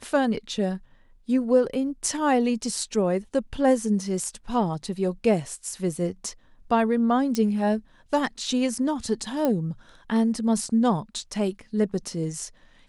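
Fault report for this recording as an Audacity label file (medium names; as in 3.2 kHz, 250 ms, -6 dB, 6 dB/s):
7.350000	7.350000	pop -13 dBFS
9.450000	9.450000	pop -12 dBFS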